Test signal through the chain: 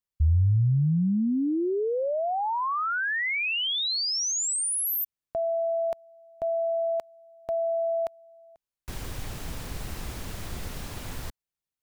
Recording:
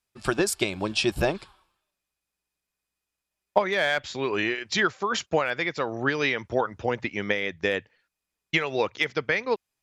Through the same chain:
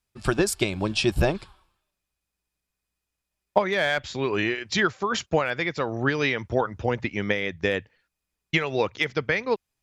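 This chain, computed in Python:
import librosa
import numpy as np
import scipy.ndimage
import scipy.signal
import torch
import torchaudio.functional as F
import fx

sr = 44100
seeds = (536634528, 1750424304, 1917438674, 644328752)

y = fx.low_shelf(x, sr, hz=160.0, db=10.0)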